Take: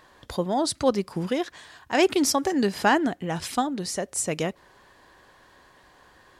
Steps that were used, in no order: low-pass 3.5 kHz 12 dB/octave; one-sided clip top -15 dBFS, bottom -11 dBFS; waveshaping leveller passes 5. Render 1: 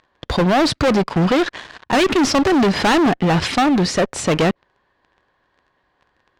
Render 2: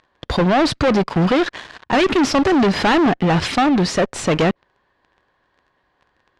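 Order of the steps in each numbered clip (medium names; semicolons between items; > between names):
waveshaping leveller > low-pass > one-sided clip; waveshaping leveller > one-sided clip > low-pass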